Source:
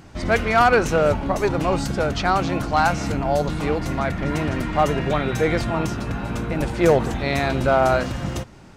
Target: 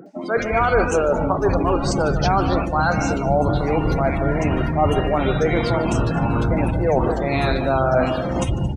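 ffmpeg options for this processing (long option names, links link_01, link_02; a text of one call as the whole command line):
ffmpeg -i in.wav -filter_complex "[0:a]afftfilt=real='re*pow(10,6/40*sin(2*PI*(0.58*log(max(b,1)*sr/1024/100)/log(2)-(2.8)*(pts-256)/sr)))':imag='im*pow(10,6/40*sin(2*PI*(0.58*log(max(b,1)*sr/1024/100)/log(2)-(2.8)*(pts-256)/sr)))':win_size=1024:overlap=0.75,areverse,acompressor=threshold=-31dB:ratio=12,areverse,equalizer=frequency=9700:width_type=o:width=0.41:gain=3,acrossover=split=200|1900[link_01][link_02][link_03];[link_03]adelay=60[link_04];[link_01]adelay=370[link_05];[link_05][link_02][link_04]amix=inputs=3:normalize=0,acontrast=78,asplit=2[link_06][link_07];[link_07]aecho=0:1:44|149|224|230:0.119|0.316|0.282|0.126[link_08];[link_06][link_08]amix=inputs=2:normalize=0,afftdn=noise_reduction=25:noise_floor=-38,volume=9dB" out.wav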